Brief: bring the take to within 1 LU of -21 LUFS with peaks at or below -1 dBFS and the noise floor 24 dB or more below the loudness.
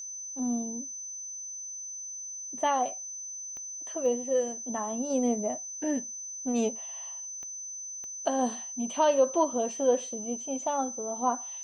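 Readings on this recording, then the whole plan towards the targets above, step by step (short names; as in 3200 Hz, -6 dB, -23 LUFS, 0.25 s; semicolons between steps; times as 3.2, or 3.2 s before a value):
clicks 4; steady tone 6100 Hz; tone level -37 dBFS; loudness -31.0 LUFS; peak -13.0 dBFS; loudness target -21.0 LUFS
-> de-click; notch 6100 Hz, Q 30; gain +10 dB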